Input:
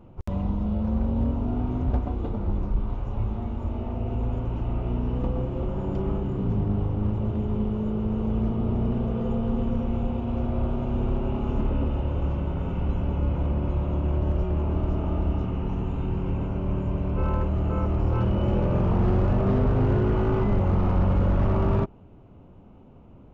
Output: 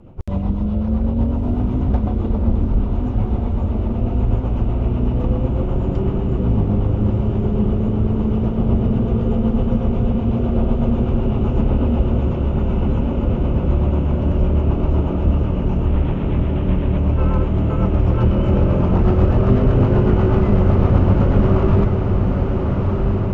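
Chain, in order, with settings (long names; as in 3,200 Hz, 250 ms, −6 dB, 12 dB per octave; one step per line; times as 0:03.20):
0:15.86–0:16.98: variable-slope delta modulation 16 kbit/s
rotating-speaker cabinet horn 8 Hz
feedback delay with all-pass diffusion 1,312 ms, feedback 67%, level −4 dB
level +7.5 dB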